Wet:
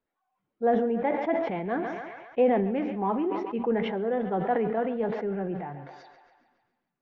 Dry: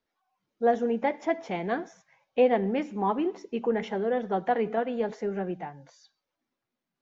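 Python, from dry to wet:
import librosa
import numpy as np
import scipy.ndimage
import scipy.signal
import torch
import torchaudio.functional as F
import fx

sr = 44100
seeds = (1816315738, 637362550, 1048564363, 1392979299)

y = fx.air_absorb(x, sr, metres=430.0)
y = fx.echo_thinned(y, sr, ms=138, feedback_pct=67, hz=490.0, wet_db=-15.0)
y = fx.sustainer(y, sr, db_per_s=39.0)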